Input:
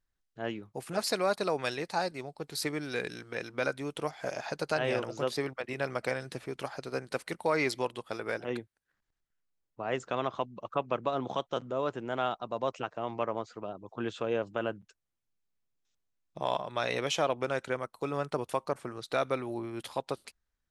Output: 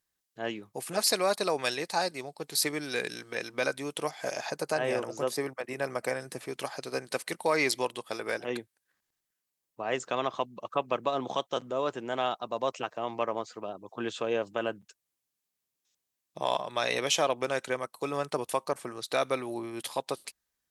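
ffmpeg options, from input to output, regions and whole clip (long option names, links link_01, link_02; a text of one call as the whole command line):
ffmpeg -i in.wav -filter_complex "[0:a]asettb=1/sr,asplit=3[link_01][link_02][link_03];[link_01]atrim=end=4.504[link_04];[link_02]atrim=start=4.5:end=6.41,asetpts=PTS-STARTPTS,afade=type=in:duration=0.004:curve=qsin,afade=type=out:start_time=1.906:duration=0.004:curve=qsin,highpass=53,equalizer=frequency=3600:width_type=o:width=1.3:gain=-9[link_05];[link_03]atrim=start=6.406[link_06];[link_04][link_05]acrossfade=duration=0.004:curve1=hsin:curve2=qsin[link_07];[link_07][link_06]acrossfade=duration=0.004:curve1=qsin:curve2=hsin,highpass=frequency=220:poles=1,aemphasis=mode=production:type=cd,bandreject=frequency=1400:width=14,volume=2.5dB" out.wav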